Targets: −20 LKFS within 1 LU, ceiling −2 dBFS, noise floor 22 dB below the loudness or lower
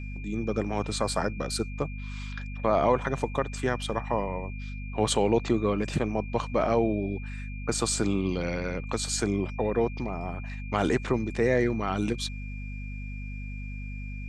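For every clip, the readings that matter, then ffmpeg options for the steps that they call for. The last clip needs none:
mains hum 50 Hz; hum harmonics up to 250 Hz; level of the hum −34 dBFS; interfering tone 2,400 Hz; level of the tone −45 dBFS; integrated loudness −29.0 LKFS; sample peak −10.5 dBFS; target loudness −20.0 LKFS
→ -af "bandreject=frequency=50:width_type=h:width=6,bandreject=frequency=100:width_type=h:width=6,bandreject=frequency=150:width_type=h:width=6,bandreject=frequency=200:width_type=h:width=6,bandreject=frequency=250:width_type=h:width=6"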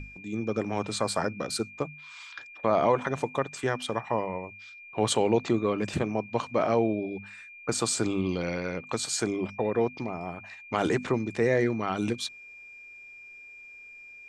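mains hum none found; interfering tone 2,400 Hz; level of the tone −45 dBFS
→ -af "bandreject=frequency=2400:width=30"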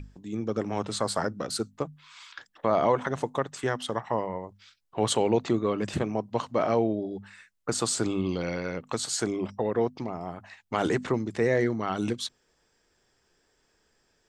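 interfering tone none found; integrated loudness −29.0 LKFS; sample peak −11.5 dBFS; target loudness −20.0 LKFS
→ -af "volume=9dB"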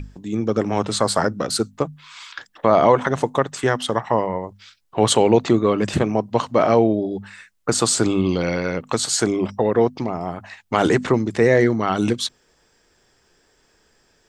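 integrated loudness −20.0 LKFS; sample peak −2.5 dBFS; background noise floor −62 dBFS

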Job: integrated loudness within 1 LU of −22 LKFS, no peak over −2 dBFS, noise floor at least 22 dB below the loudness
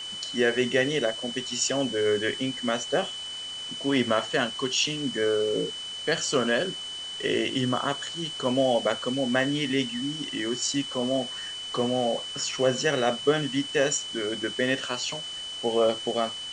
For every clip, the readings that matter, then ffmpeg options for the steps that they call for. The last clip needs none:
interfering tone 3,000 Hz; level of the tone −34 dBFS; background noise floor −37 dBFS; target noise floor −49 dBFS; integrated loudness −26.5 LKFS; sample peak −9.5 dBFS; target loudness −22.0 LKFS
→ -af "bandreject=frequency=3000:width=30"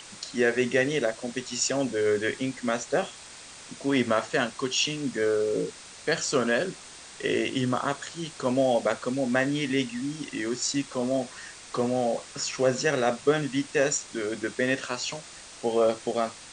interfering tone none found; background noise floor −46 dBFS; target noise floor −50 dBFS
→ -af "afftdn=noise_reduction=6:noise_floor=-46"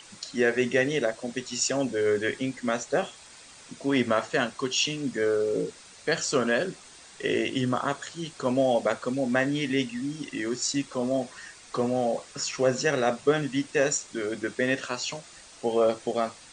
background noise floor −50 dBFS; integrated loudness −27.5 LKFS; sample peak −9.5 dBFS; target loudness −22.0 LKFS
→ -af "volume=5.5dB"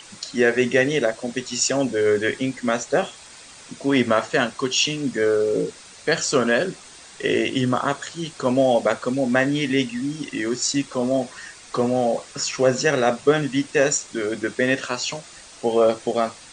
integrated loudness −22.0 LKFS; sample peak −4.0 dBFS; background noise floor −44 dBFS

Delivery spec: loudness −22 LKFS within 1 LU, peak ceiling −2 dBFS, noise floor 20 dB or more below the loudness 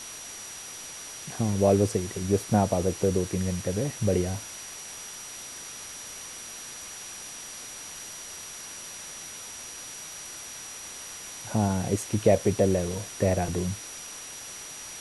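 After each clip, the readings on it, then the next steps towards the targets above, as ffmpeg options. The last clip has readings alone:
interfering tone 5,800 Hz; level of the tone −42 dBFS; background noise floor −41 dBFS; target noise floor −50 dBFS; integrated loudness −30.0 LKFS; sample peak −8.0 dBFS; target loudness −22.0 LKFS
→ -af "bandreject=frequency=5800:width=30"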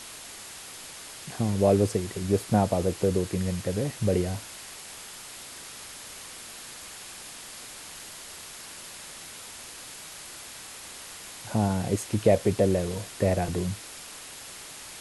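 interfering tone none found; background noise floor −43 dBFS; target noise floor −50 dBFS
→ -af "afftdn=noise_reduction=7:noise_floor=-43"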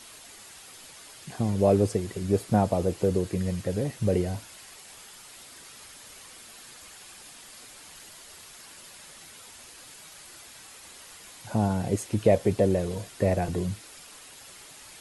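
background noise floor −48 dBFS; integrated loudness −26.5 LKFS; sample peak −8.0 dBFS; target loudness −22.0 LKFS
→ -af "volume=4.5dB"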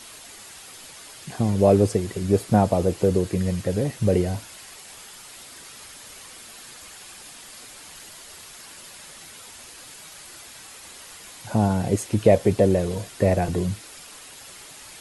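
integrated loudness −22.0 LKFS; sample peak −3.5 dBFS; background noise floor −44 dBFS

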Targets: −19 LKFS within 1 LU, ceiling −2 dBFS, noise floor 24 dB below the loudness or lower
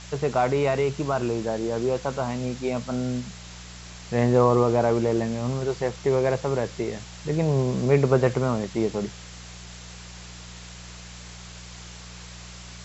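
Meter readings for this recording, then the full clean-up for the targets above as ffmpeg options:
mains hum 60 Hz; hum harmonics up to 180 Hz; level of the hum −43 dBFS; background noise floor −42 dBFS; target noise floor −49 dBFS; integrated loudness −24.5 LKFS; sample peak −6.0 dBFS; target loudness −19.0 LKFS
→ -af "bandreject=frequency=60:width_type=h:width=4,bandreject=frequency=120:width_type=h:width=4,bandreject=frequency=180:width_type=h:width=4"
-af "afftdn=noise_reduction=7:noise_floor=-42"
-af "volume=5.5dB,alimiter=limit=-2dB:level=0:latency=1"

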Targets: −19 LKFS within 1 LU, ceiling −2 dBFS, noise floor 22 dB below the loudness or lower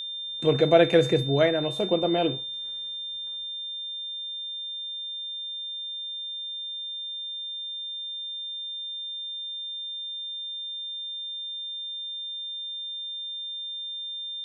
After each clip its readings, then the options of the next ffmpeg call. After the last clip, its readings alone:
interfering tone 3,600 Hz; level of the tone −32 dBFS; integrated loudness −28.5 LKFS; sample peak −4.5 dBFS; target loudness −19.0 LKFS
→ -af "bandreject=frequency=3600:width=30"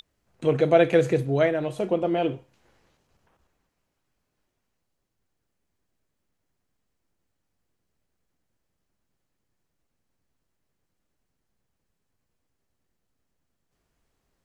interfering tone none found; integrated loudness −23.0 LKFS; sample peak −5.0 dBFS; target loudness −19.0 LKFS
→ -af "volume=4dB,alimiter=limit=-2dB:level=0:latency=1"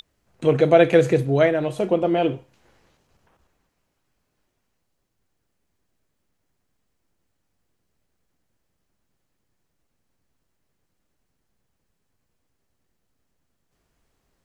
integrated loudness −19.0 LKFS; sample peak −2.0 dBFS; background noise floor −75 dBFS

